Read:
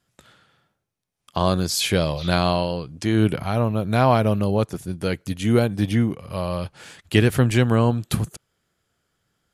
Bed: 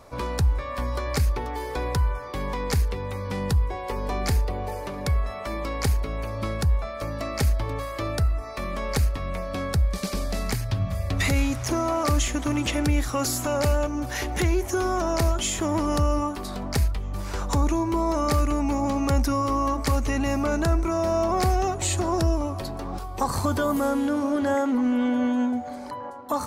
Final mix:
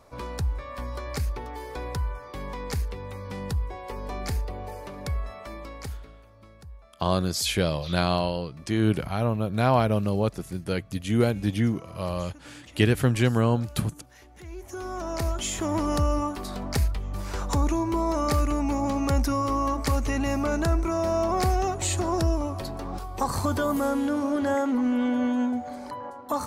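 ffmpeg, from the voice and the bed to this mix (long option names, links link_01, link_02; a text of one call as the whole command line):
ffmpeg -i stem1.wav -i stem2.wav -filter_complex "[0:a]adelay=5650,volume=-4dB[link_01];[1:a]volume=15.5dB,afade=type=out:start_time=5.24:duration=0.99:silence=0.141254,afade=type=in:start_time=14.41:duration=1.39:silence=0.0841395[link_02];[link_01][link_02]amix=inputs=2:normalize=0" out.wav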